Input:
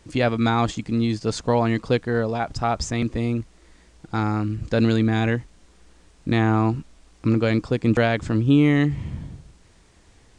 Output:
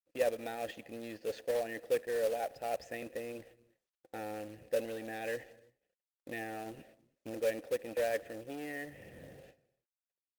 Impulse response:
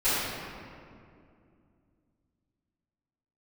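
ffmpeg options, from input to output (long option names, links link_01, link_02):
-filter_complex "[0:a]acontrast=32,asoftclip=type=tanh:threshold=-9.5dB,areverse,acompressor=threshold=-31dB:ratio=4,areverse,agate=range=-55dB:threshold=-40dB:ratio=16:detection=peak,asplit=3[link_01][link_02][link_03];[link_01]bandpass=frequency=530:width_type=q:width=8,volume=0dB[link_04];[link_02]bandpass=frequency=1840:width_type=q:width=8,volume=-6dB[link_05];[link_03]bandpass=frequency=2480:width_type=q:width=8,volume=-9dB[link_06];[link_04][link_05][link_06]amix=inputs=3:normalize=0,equalizer=frequency=770:width=4.7:gain=9,asplit=2[link_07][link_08];[1:a]atrim=start_sample=2205,afade=type=out:start_time=0.39:duration=0.01,atrim=end_sample=17640[link_09];[link_08][link_09]afir=irnorm=-1:irlink=0,volume=-33dB[link_10];[link_07][link_10]amix=inputs=2:normalize=0,adynamicequalizer=threshold=0.00126:dfrequency=150:dqfactor=0.72:tfrequency=150:tqfactor=0.72:attack=5:release=100:ratio=0.375:range=3.5:mode=cutabove:tftype=bell,acrusher=bits=3:mode=log:mix=0:aa=0.000001,volume=7dB" -ar 48000 -c:a libopus -b:a 32k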